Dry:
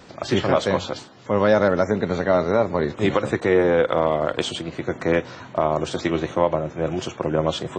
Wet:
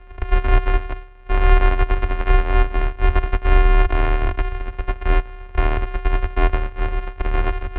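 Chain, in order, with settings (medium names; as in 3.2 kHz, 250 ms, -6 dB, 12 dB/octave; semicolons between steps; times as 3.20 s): sorted samples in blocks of 128 samples; mistuned SSB -310 Hz 350–3000 Hz; resonant low shelf 110 Hz +10.5 dB, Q 3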